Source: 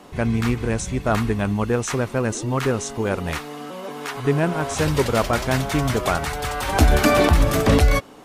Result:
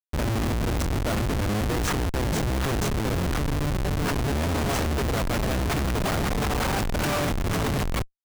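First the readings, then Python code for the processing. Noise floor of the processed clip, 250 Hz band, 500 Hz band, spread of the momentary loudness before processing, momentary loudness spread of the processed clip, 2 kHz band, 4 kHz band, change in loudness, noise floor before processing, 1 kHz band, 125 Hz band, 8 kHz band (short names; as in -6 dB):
-28 dBFS, -5.0 dB, -7.5 dB, 9 LU, 1 LU, -5.0 dB, -2.5 dB, -5.0 dB, -39 dBFS, -5.0 dB, -3.5 dB, -4.0 dB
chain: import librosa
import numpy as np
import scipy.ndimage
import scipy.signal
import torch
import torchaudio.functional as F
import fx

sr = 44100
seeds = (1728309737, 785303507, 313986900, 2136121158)

y = fx.octave_divider(x, sr, octaves=1, level_db=4.0)
y = fx.schmitt(y, sr, flips_db=-26.5)
y = y * 10.0 ** (-8.0 / 20.0)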